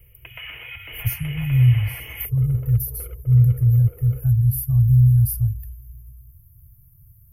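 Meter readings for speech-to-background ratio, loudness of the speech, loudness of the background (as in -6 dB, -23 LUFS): 18.0 dB, -19.0 LUFS, -37.0 LUFS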